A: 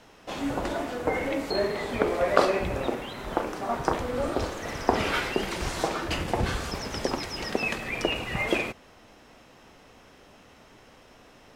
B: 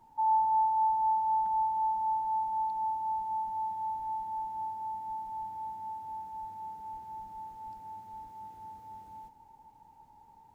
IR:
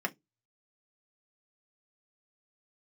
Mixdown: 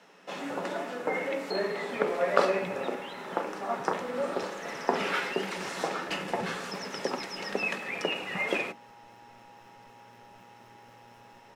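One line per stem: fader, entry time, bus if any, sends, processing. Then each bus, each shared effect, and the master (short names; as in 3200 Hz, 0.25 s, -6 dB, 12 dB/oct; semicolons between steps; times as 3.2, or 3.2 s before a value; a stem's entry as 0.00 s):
-5.0 dB, 0.00 s, send -10 dB, HPF 170 Hz 24 dB/oct; high shelf 10000 Hz -6.5 dB
-14.5 dB, 2.10 s, no send, robotiser 118 Hz; fast leveller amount 70%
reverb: on, RT60 0.15 s, pre-delay 3 ms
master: dry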